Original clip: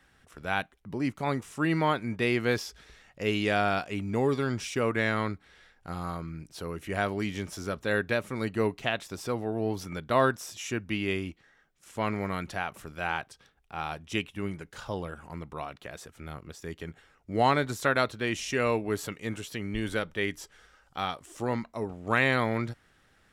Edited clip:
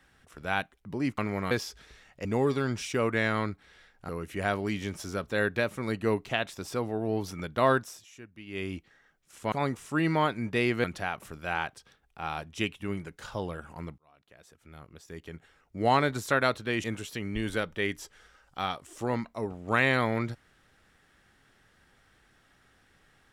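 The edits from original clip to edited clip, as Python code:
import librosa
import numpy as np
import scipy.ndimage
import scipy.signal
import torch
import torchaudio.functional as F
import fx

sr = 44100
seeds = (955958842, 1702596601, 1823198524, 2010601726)

y = fx.edit(x, sr, fx.swap(start_s=1.18, length_s=1.32, other_s=12.05, other_length_s=0.33),
    fx.cut(start_s=3.24, length_s=0.83),
    fx.cut(start_s=5.91, length_s=0.71),
    fx.fade_down_up(start_s=10.32, length_s=0.95, db=-16.0, fade_s=0.28),
    fx.fade_in_span(start_s=15.52, length_s=1.98),
    fx.cut(start_s=18.38, length_s=0.85), tone=tone)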